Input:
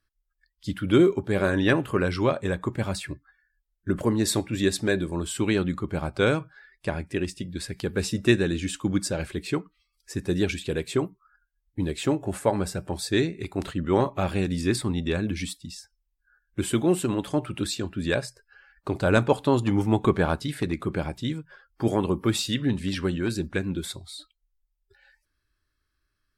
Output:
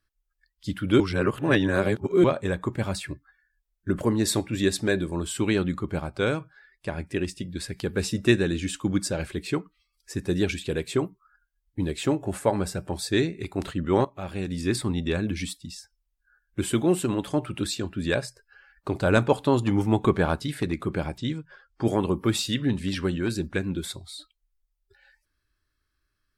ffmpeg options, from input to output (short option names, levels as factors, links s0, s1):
-filter_complex "[0:a]asettb=1/sr,asplit=3[s0][s1][s2];[s0]atrim=end=21.184[s3];[s1]atrim=start=21.18:end=21.85,asetpts=PTS-STARTPTS,afade=t=in:d=0.004:c=qsin,afade=t=out:st=0.666:d=0.004:c=qsin,lowpass=f=7900:w=0.5412,lowpass=f=7900:w=1.3066[s4];[s2]atrim=start=21.846[s5];[s3][s4]acrossfade=d=0.004:c1=hsin:c2=qsin[s6];[s6][s5]acrossfade=d=0.004:c1=qsin:c2=hsin,asplit=6[s7][s8][s9][s10][s11][s12];[s7]atrim=end=1.002[s13];[s8]atrim=start=0.998:end=2.242,asetpts=PTS-STARTPTS,areverse[s14];[s9]atrim=start=2.238:end=6.002[s15];[s10]atrim=start=5.998:end=6.982,asetpts=PTS-STARTPTS,volume=0.708[s16];[s11]atrim=start=6.978:end=14.05,asetpts=PTS-STARTPTS,afade=t=out:st=7.068:d=0.004:c=hsin:silence=0.16788[s17];[s12]atrim=start=14.05,asetpts=PTS-STARTPTS,afade=t=in:d=0.77:silence=0.16788[s18];[s13][s14]acrossfade=d=0.004:c1=hsin:c2=hsin[s19];[s19][s15]acrossfade=d=0.004:c1=hsin:c2=hsin[s20];[s20][s16]acrossfade=d=0.004:c1=hsin:c2=hsin[s21];[s17][s18]concat=n=2:v=0:a=1[s22];[s21][s22]acrossfade=d=0.004:c1=hsin:c2=hsin"